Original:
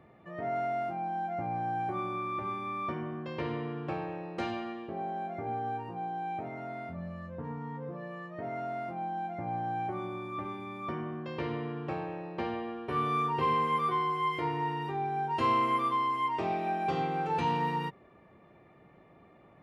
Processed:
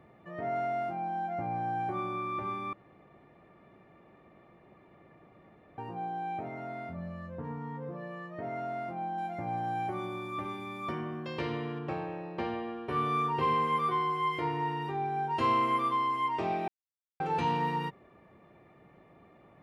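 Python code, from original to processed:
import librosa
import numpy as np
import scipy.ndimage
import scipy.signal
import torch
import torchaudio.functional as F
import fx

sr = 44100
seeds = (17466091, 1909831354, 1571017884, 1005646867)

y = fx.high_shelf(x, sr, hz=3700.0, db=10.5, at=(9.18, 11.79))
y = fx.edit(y, sr, fx.room_tone_fill(start_s=2.73, length_s=3.05),
    fx.silence(start_s=16.68, length_s=0.52), tone=tone)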